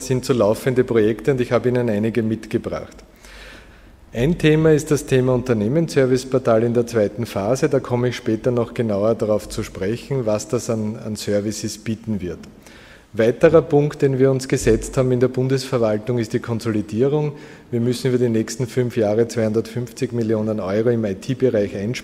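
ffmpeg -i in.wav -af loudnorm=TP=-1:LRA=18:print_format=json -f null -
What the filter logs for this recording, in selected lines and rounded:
"input_i" : "-19.8",
"input_tp" : "-1.4",
"input_lra" : "4.6",
"input_thresh" : "-30.2",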